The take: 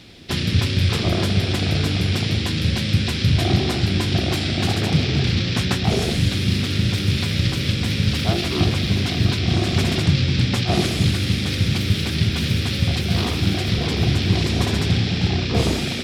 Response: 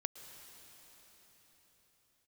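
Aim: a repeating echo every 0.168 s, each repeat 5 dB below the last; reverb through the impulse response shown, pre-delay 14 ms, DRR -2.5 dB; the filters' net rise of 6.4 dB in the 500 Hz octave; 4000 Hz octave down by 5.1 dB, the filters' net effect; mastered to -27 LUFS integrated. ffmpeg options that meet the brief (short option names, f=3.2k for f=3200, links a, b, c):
-filter_complex "[0:a]equalizer=f=500:t=o:g=9,equalizer=f=4k:t=o:g=-6.5,aecho=1:1:168|336|504|672|840|1008|1176:0.562|0.315|0.176|0.0988|0.0553|0.031|0.0173,asplit=2[a][b];[1:a]atrim=start_sample=2205,adelay=14[c];[b][c]afir=irnorm=-1:irlink=0,volume=4dB[d];[a][d]amix=inputs=2:normalize=0,volume=-13.5dB"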